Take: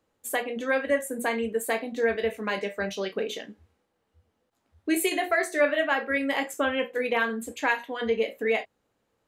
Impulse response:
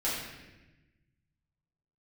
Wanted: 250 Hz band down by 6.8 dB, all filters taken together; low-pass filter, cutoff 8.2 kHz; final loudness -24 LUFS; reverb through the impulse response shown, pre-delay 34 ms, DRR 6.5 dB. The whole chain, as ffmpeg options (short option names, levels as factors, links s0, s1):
-filter_complex "[0:a]lowpass=8200,equalizer=f=250:t=o:g=-8.5,asplit=2[s0][s1];[1:a]atrim=start_sample=2205,adelay=34[s2];[s1][s2]afir=irnorm=-1:irlink=0,volume=0.188[s3];[s0][s3]amix=inputs=2:normalize=0,volume=1.5"